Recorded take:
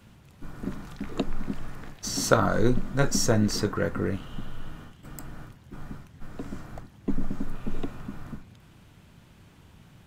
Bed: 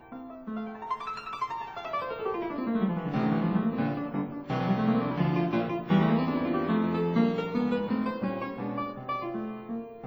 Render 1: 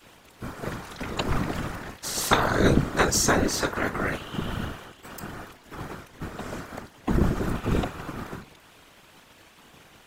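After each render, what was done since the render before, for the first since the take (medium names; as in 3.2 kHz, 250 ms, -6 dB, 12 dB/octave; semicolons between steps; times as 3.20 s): spectral peaks clipped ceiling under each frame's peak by 20 dB; whisper effect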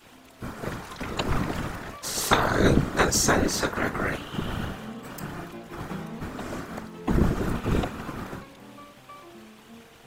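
add bed -13.5 dB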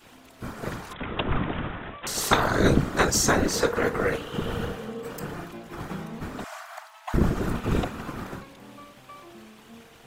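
0.93–2.07 s: careless resampling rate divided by 6×, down none, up filtered; 3.51–5.36 s: peaking EQ 470 Hz +14.5 dB 0.22 oct; 6.44–7.14 s: brick-wall FIR high-pass 610 Hz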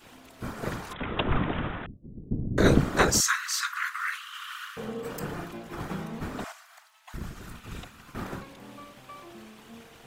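1.86–2.58 s: inverse Chebyshev low-pass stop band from 1.6 kHz, stop band 80 dB; 3.20–4.77 s: steep high-pass 1.1 kHz 72 dB/octave; 6.52–8.15 s: amplifier tone stack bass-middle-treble 5-5-5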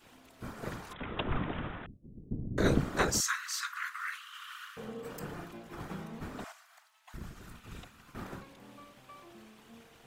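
trim -7 dB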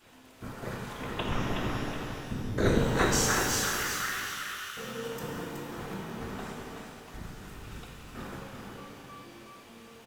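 feedback delay 372 ms, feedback 31%, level -5.5 dB; pitch-shifted reverb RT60 2.1 s, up +12 st, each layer -8 dB, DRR -0.5 dB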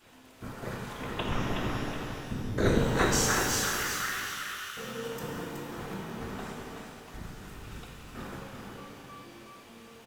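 no audible change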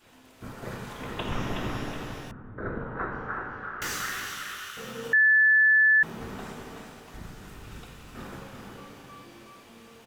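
2.31–3.82 s: four-pole ladder low-pass 1.6 kHz, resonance 55%; 5.13–6.03 s: bleep 1.74 kHz -16 dBFS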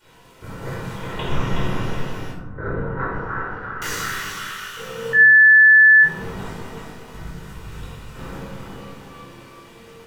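simulated room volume 970 m³, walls furnished, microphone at 4.7 m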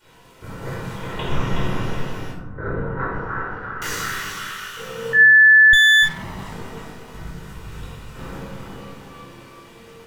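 5.73–6.53 s: comb filter that takes the minimum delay 0.99 ms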